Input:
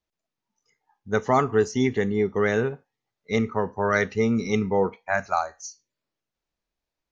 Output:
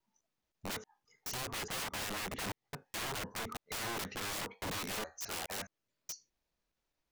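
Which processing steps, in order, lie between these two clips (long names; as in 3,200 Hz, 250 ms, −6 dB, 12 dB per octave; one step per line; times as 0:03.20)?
slices reordered back to front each 210 ms, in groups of 3
downward compressor 3 to 1, threshold −32 dBFS, peak gain reduction 12.5 dB
wrap-around overflow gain 34 dB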